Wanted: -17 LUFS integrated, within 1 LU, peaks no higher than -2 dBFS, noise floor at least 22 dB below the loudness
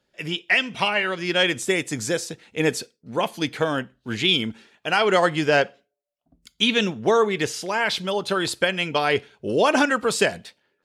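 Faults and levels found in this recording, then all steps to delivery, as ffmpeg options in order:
loudness -22.5 LUFS; peak -6.5 dBFS; loudness target -17.0 LUFS
-> -af "volume=5.5dB,alimiter=limit=-2dB:level=0:latency=1"

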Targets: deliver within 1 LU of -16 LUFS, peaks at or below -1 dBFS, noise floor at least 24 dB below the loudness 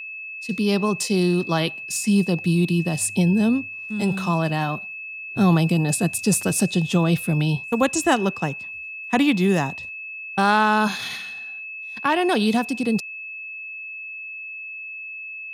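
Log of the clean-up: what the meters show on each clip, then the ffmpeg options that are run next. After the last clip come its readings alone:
steady tone 2600 Hz; tone level -32 dBFS; loudness -22.5 LUFS; peak -5.5 dBFS; loudness target -16.0 LUFS
-> -af "bandreject=f=2.6k:w=30"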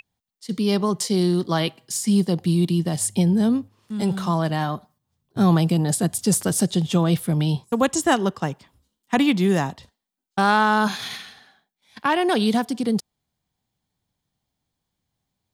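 steady tone none; loudness -21.5 LUFS; peak -5.5 dBFS; loudness target -16.0 LUFS
-> -af "volume=5.5dB,alimiter=limit=-1dB:level=0:latency=1"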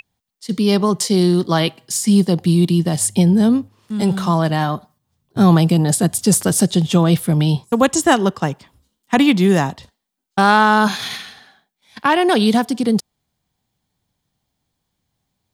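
loudness -16.0 LUFS; peak -1.0 dBFS; noise floor -76 dBFS

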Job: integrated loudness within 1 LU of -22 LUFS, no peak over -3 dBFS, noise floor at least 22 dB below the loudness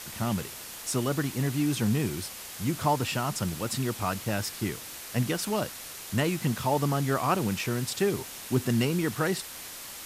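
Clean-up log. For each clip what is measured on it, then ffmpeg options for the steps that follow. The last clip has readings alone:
noise floor -42 dBFS; noise floor target -52 dBFS; loudness -29.5 LUFS; peak -12.0 dBFS; loudness target -22.0 LUFS
-> -af "afftdn=nr=10:nf=-42"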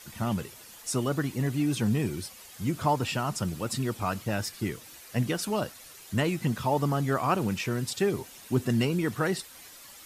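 noise floor -49 dBFS; noise floor target -52 dBFS
-> -af "afftdn=nr=6:nf=-49"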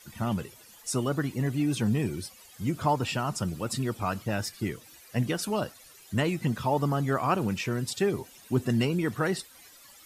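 noise floor -53 dBFS; loudness -29.5 LUFS; peak -12.0 dBFS; loudness target -22.0 LUFS
-> -af "volume=7.5dB"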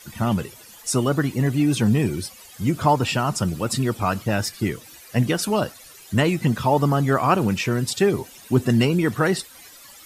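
loudness -22.0 LUFS; peak -4.5 dBFS; noise floor -46 dBFS

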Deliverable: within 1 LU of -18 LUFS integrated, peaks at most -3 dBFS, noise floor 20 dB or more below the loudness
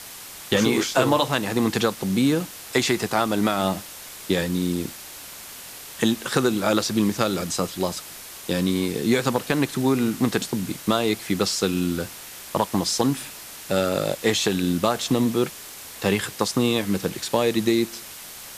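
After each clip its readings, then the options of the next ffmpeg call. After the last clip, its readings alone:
noise floor -40 dBFS; noise floor target -44 dBFS; loudness -23.5 LUFS; peak -6.0 dBFS; loudness target -18.0 LUFS
-> -af "afftdn=nr=6:nf=-40"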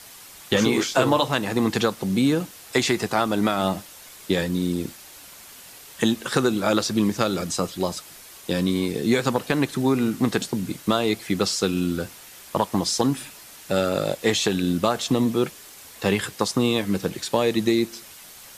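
noise floor -45 dBFS; loudness -23.5 LUFS; peak -6.0 dBFS; loudness target -18.0 LUFS
-> -af "volume=5.5dB,alimiter=limit=-3dB:level=0:latency=1"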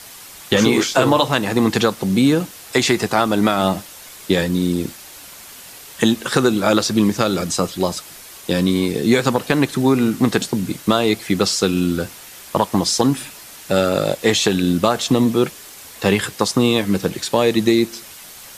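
loudness -18.0 LUFS; peak -3.0 dBFS; noise floor -39 dBFS

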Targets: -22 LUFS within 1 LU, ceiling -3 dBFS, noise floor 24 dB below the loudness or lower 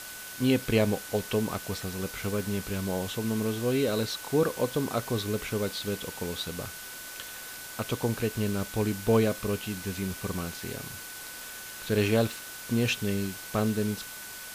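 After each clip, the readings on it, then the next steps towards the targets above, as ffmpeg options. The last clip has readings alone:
steady tone 1500 Hz; tone level -46 dBFS; noise floor -42 dBFS; noise floor target -54 dBFS; loudness -30.0 LUFS; peak -11.0 dBFS; loudness target -22.0 LUFS
-> -af "bandreject=f=1.5k:w=30"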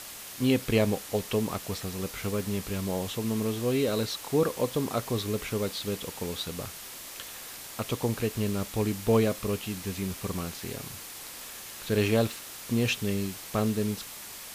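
steady tone none; noise floor -43 dBFS; noise floor target -55 dBFS
-> -af "afftdn=nr=12:nf=-43"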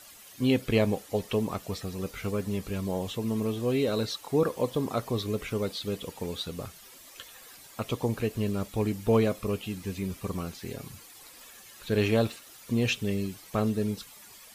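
noise floor -51 dBFS; noise floor target -54 dBFS
-> -af "afftdn=nr=6:nf=-51"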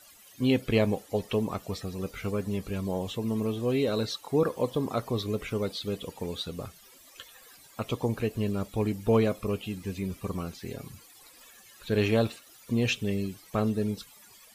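noise floor -55 dBFS; loudness -30.0 LUFS; peak -11.5 dBFS; loudness target -22.0 LUFS
-> -af "volume=8dB"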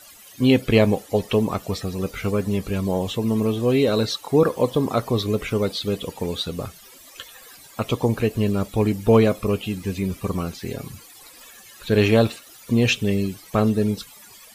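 loudness -22.0 LUFS; peak -3.5 dBFS; noise floor -47 dBFS

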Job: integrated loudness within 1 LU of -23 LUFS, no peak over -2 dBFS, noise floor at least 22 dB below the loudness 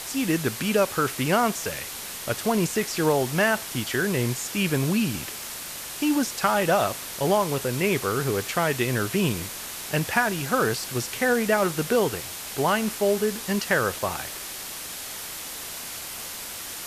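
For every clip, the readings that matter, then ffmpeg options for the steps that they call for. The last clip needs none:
noise floor -36 dBFS; noise floor target -48 dBFS; loudness -25.5 LUFS; peak -7.5 dBFS; loudness target -23.0 LUFS
-> -af "afftdn=nr=12:nf=-36"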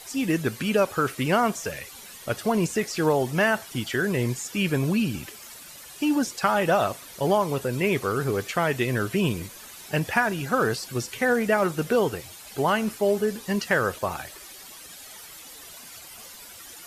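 noise floor -44 dBFS; noise floor target -47 dBFS
-> -af "afftdn=nr=6:nf=-44"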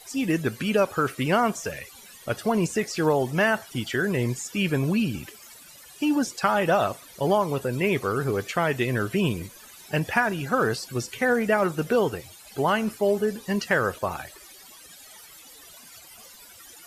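noise floor -48 dBFS; loudness -25.0 LUFS; peak -7.5 dBFS; loudness target -23.0 LUFS
-> -af "volume=2dB"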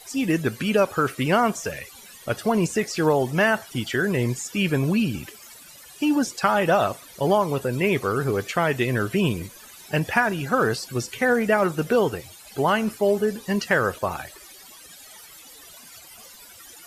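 loudness -23.0 LUFS; peak -5.5 dBFS; noise floor -46 dBFS

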